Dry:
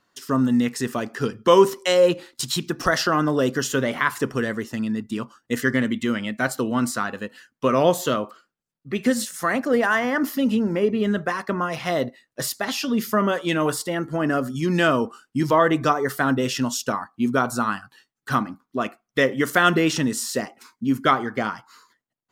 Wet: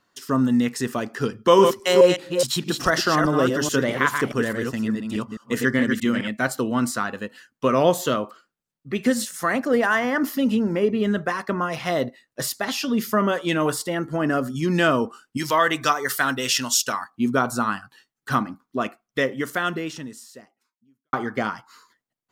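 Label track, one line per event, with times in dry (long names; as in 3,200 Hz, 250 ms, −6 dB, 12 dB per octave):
1.380000	6.280000	delay that plays each chunk backwards 210 ms, level −5 dB
15.370000	17.100000	tilt shelving filter lows −8.5 dB, about 1,100 Hz
18.850000	21.130000	fade out quadratic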